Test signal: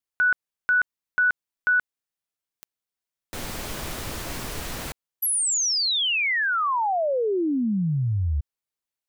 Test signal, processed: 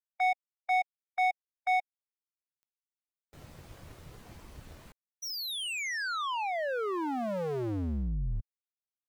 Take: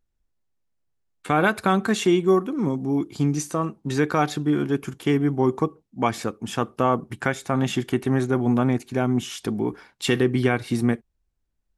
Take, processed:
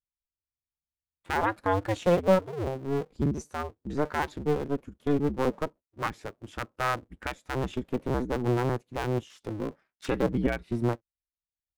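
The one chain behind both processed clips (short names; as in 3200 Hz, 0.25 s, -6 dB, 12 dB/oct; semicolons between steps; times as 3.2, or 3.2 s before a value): cycle switcher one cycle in 2, inverted; spectral expander 1.5:1; gain -6 dB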